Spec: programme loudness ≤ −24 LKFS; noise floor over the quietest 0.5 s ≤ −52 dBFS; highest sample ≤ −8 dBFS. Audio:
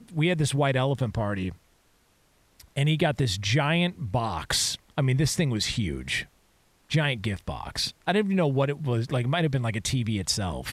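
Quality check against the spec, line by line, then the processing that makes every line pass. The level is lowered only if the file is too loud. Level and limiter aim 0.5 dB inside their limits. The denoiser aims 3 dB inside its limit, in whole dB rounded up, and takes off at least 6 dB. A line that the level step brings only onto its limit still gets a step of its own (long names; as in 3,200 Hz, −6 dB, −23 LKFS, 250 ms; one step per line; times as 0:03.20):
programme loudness −26.5 LKFS: in spec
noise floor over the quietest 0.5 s −64 dBFS: in spec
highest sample −10.5 dBFS: in spec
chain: no processing needed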